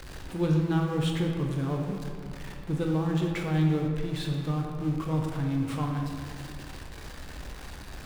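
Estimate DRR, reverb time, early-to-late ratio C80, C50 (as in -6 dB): 1.0 dB, 2.1 s, 4.5 dB, 3.0 dB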